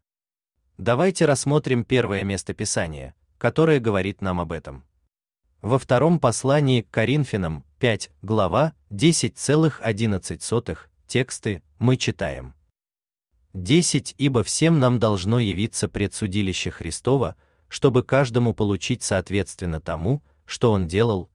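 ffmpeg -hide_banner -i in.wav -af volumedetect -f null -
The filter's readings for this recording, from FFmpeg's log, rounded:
mean_volume: -22.5 dB
max_volume: -4.7 dB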